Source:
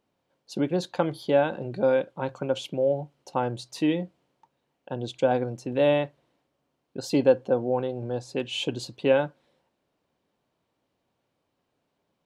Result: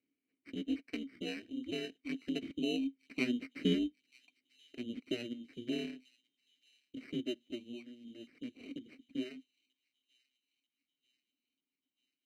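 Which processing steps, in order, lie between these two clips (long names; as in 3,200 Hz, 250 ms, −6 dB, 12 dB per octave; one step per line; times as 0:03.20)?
source passing by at 0:03.44, 21 m/s, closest 19 metres
reverb reduction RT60 1.6 s
in parallel at +2 dB: downward compressor, threshold −53 dBFS, peak gain reduction 29 dB
on the sum: ring modulation 120 Hz
sample-rate reduction 3,400 Hz, jitter 0%
formant filter i
on a send: delay with a high-pass on its return 939 ms, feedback 53%, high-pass 3,800 Hz, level −17.5 dB
on the sum: level +11 dB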